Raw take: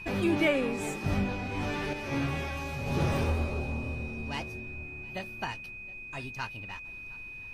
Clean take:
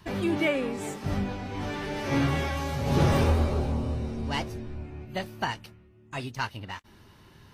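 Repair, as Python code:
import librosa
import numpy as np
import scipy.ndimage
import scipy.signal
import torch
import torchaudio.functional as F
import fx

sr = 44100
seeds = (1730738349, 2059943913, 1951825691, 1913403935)

y = fx.notch(x, sr, hz=2500.0, q=30.0)
y = fx.noise_reduce(y, sr, print_start_s=5.62, print_end_s=6.12, reduce_db=10.0)
y = fx.fix_echo_inverse(y, sr, delay_ms=717, level_db=-23.5)
y = fx.fix_level(y, sr, at_s=1.93, step_db=6.0)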